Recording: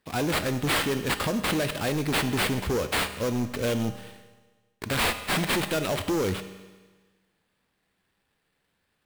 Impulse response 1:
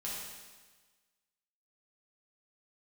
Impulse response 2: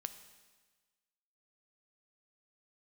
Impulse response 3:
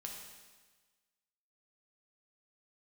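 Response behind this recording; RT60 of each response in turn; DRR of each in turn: 2; 1.4, 1.4, 1.4 seconds; −7.0, 9.5, −0.5 decibels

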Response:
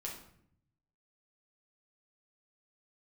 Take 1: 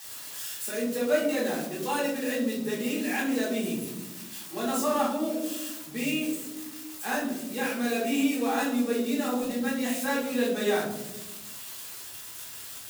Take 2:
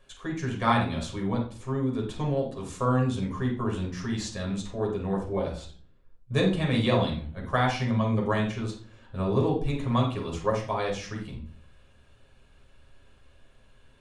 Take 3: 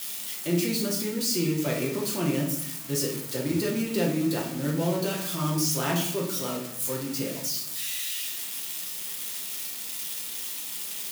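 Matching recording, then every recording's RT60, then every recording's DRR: 3; 1.1, 0.45, 0.65 seconds; −9.0, −2.0, −2.5 decibels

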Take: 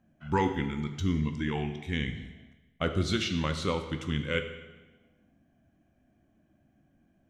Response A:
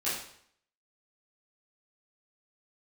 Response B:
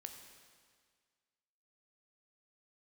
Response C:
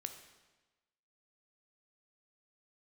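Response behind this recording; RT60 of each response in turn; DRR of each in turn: C; 0.65, 1.8, 1.2 seconds; −11.5, 4.5, 6.5 decibels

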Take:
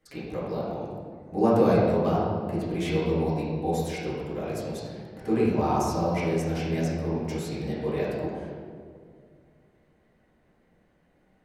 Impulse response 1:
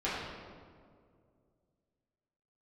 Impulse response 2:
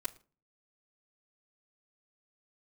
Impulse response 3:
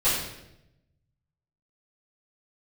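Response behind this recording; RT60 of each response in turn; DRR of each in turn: 1; 2.2 s, non-exponential decay, 0.85 s; −11.0, −10.5, −14.0 decibels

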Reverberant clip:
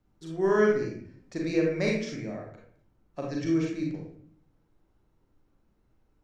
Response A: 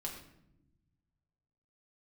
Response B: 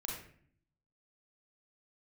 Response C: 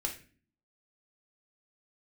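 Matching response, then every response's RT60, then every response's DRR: B; non-exponential decay, 0.55 s, non-exponential decay; −1.5, −2.0, 1.0 decibels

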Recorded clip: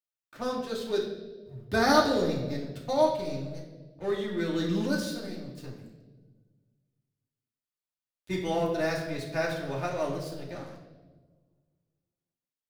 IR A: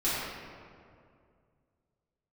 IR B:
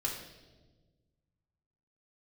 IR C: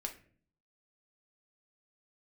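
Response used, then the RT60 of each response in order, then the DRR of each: B; 2.3, 1.3, 0.45 seconds; −12.0, −3.5, 3.0 decibels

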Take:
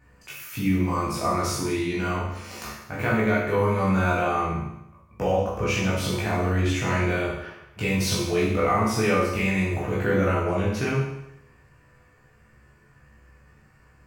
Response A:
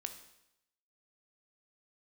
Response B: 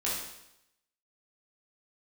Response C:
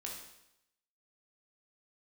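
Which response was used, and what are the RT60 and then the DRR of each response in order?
B; 0.85, 0.85, 0.85 seconds; 6.5, −7.5, −2.0 decibels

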